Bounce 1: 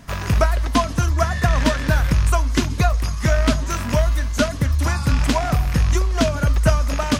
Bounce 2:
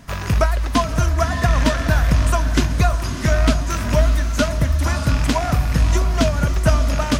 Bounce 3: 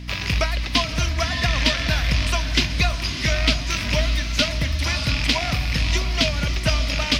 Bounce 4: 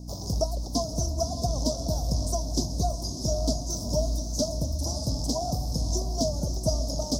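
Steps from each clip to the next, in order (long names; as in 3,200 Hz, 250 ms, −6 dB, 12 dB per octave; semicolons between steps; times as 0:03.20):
feedback delay with all-pass diffusion 596 ms, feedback 41%, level −9 dB
flat-topped bell 3,300 Hz +14.5 dB; in parallel at −10 dB: soft clipping −10 dBFS, distortion −13 dB; on the sum: mains hum 60 Hz, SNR 13 dB; level −8 dB
elliptic band-stop filter 750–5,800 Hz, stop band 70 dB; low-shelf EQ 180 Hz −7 dB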